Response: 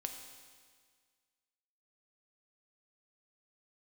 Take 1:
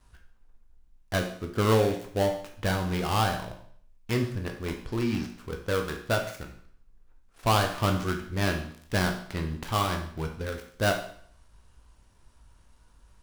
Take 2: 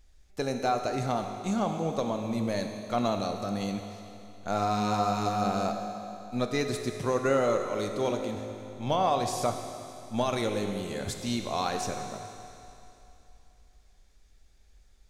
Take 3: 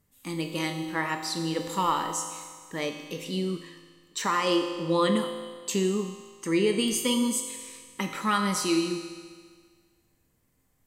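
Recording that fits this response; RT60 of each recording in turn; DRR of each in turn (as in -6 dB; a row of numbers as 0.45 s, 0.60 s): 3; 0.55 s, 2.9 s, 1.7 s; 3.0 dB, 4.5 dB, 4.0 dB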